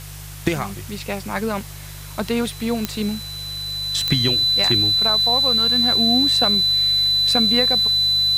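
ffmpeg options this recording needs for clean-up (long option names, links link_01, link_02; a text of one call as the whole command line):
ffmpeg -i in.wav -af "adeclick=threshold=4,bandreject=frequency=49.8:width_type=h:width=4,bandreject=frequency=99.6:width_type=h:width=4,bandreject=frequency=149.4:width_type=h:width=4,bandreject=frequency=4000:width=30,afwtdn=0.011" out.wav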